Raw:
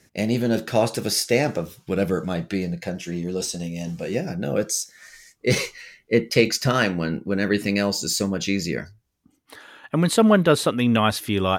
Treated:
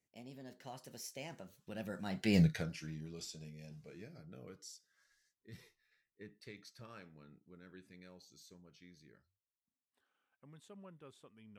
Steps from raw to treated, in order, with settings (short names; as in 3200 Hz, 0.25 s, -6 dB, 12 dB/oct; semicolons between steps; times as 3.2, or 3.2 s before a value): Doppler pass-by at 2.4, 37 m/s, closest 2.1 m; dynamic EQ 430 Hz, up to -7 dB, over -56 dBFS, Q 0.84; spectral gain 5.45–5.92, 260–10000 Hz -7 dB; gain +3.5 dB